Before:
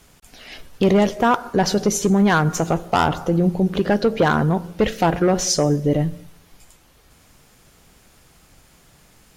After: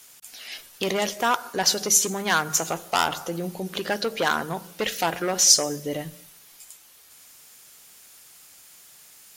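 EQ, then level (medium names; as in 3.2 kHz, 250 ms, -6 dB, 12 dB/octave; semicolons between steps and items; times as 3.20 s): tilt EQ +4 dB/octave; hum notches 50/100/150/200 Hz; -4.5 dB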